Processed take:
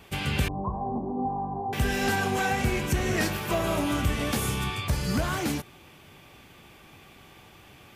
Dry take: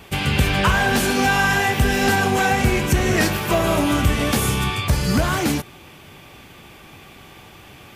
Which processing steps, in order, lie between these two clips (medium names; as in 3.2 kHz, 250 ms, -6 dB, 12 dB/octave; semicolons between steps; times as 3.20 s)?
0.48–1.73 s: rippled Chebyshev low-pass 1.1 kHz, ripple 6 dB; trim -8 dB